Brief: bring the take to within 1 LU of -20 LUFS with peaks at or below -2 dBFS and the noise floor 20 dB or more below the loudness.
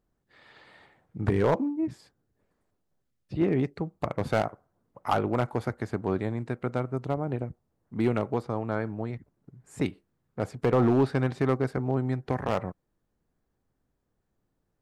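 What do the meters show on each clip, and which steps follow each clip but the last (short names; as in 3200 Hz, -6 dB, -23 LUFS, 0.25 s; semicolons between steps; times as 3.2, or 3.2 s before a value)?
clipped 0.4%; flat tops at -16.0 dBFS; loudness -29.0 LUFS; peak -16.0 dBFS; loudness target -20.0 LUFS
-> clip repair -16 dBFS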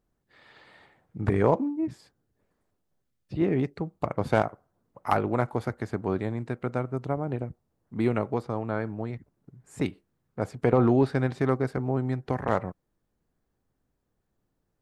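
clipped 0.0%; loudness -28.5 LUFS; peak -7.0 dBFS; loudness target -20.0 LUFS
-> gain +8.5 dB; limiter -2 dBFS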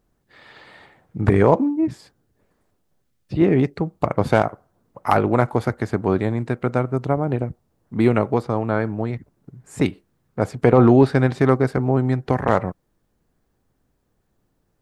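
loudness -20.0 LUFS; peak -2.0 dBFS; noise floor -69 dBFS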